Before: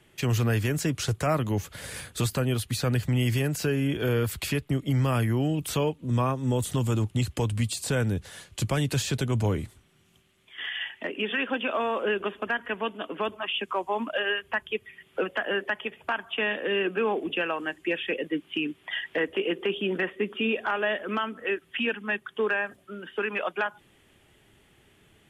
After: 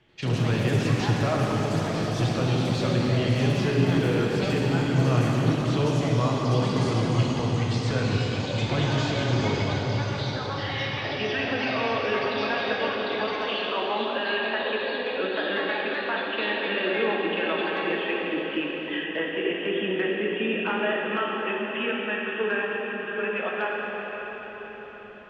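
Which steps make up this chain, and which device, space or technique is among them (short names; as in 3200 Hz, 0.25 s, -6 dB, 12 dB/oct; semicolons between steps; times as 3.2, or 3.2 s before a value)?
cathedral (reverb RT60 5.8 s, pre-delay 3 ms, DRR -3.5 dB); LPF 5200 Hz 24 dB/oct; echoes that change speed 85 ms, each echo +5 st, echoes 3, each echo -6 dB; gain -3.5 dB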